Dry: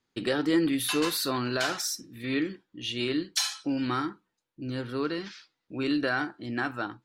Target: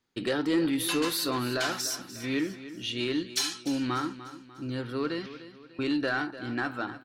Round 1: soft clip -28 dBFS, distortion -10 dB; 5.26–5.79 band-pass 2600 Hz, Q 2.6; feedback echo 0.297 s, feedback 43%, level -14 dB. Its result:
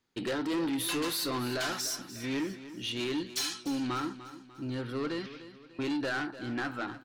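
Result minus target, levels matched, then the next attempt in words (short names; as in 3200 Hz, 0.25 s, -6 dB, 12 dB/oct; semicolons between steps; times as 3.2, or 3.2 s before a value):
soft clip: distortion +12 dB
soft clip -18 dBFS, distortion -21 dB; 5.26–5.79 band-pass 2600 Hz, Q 2.6; feedback echo 0.297 s, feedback 43%, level -14 dB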